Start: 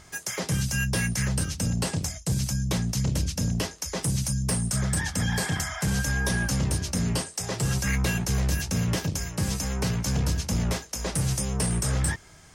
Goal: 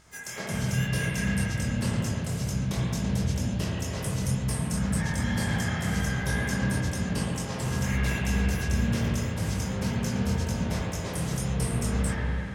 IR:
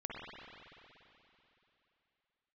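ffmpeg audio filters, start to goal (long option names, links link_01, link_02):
-filter_complex "[0:a]asplit=2[link_01][link_02];[link_02]asetrate=55563,aresample=44100,atempo=0.793701,volume=-11dB[link_03];[link_01][link_03]amix=inputs=2:normalize=0,flanger=delay=18.5:depth=7:speed=2[link_04];[1:a]atrim=start_sample=2205[link_05];[link_04][link_05]afir=irnorm=-1:irlink=0,volume=1dB"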